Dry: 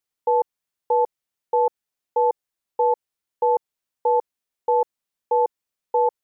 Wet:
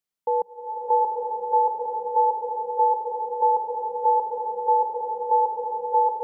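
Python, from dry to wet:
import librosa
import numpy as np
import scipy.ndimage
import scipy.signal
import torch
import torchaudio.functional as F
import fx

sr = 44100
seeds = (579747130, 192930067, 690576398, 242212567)

y = fx.peak_eq(x, sr, hz=190.0, db=8.5, octaves=0.33)
y = fx.rev_bloom(y, sr, seeds[0], attack_ms=940, drr_db=-3.5)
y = y * 10.0 ** (-4.0 / 20.0)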